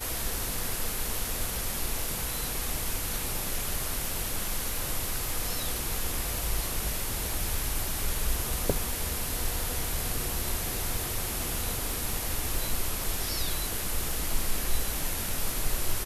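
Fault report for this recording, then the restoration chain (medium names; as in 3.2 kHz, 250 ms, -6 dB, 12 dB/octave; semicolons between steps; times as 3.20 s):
crackle 57 per s -35 dBFS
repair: de-click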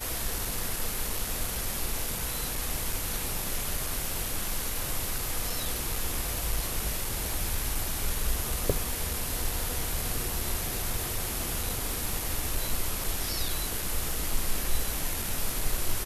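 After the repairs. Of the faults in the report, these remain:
nothing left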